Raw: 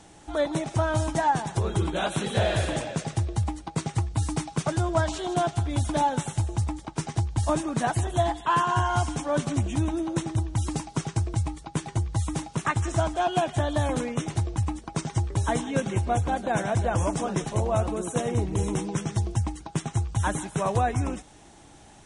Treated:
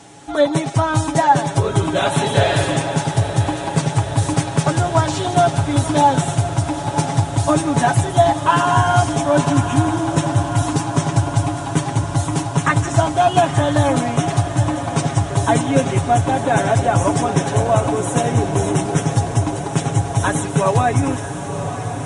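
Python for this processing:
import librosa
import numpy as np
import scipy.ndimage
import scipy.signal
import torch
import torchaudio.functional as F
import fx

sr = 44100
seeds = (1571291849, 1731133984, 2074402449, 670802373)

y = scipy.signal.sosfilt(scipy.signal.butter(2, 82.0, 'highpass', fs=sr, output='sos'), x)
y = y + 0.68 * np.pad(y, (int(7.2 * sr / 1000.0), 0))[:len(y)]
y = fx.echo_diffused(y, sr, ms=969, feedback_pct=75, wet_db=-10.0)
y = y * librosa.db_to_amplitude(7.5)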